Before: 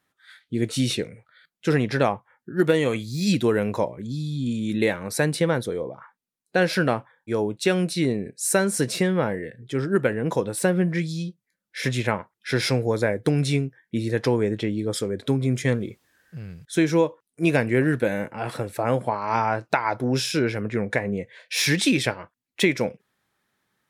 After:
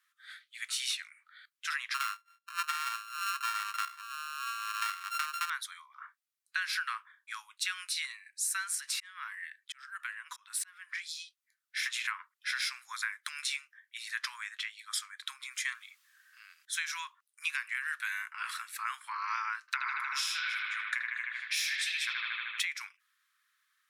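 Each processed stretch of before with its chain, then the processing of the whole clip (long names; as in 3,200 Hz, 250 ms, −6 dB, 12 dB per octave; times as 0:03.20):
0:01.94–0:05.50: samples sorted by size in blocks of 32 samples + high-shelf EQ 2,400 Hz −8.5 dB
0:08.75–0:11.24: downward compressor 5 to 1, threshold −26 dBFS + volume swells 210 ms
0:19.60–0:22.62: comb filter 6.7 ms, depth 31% + bucket-brigade delay 77 ms, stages 2,048, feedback 74%, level −3.5 dB
whole clip: Butterworth high-pass 1,100 Hz 72 dB per octave; downward compressor 10 to 1, threshold −30 dBFS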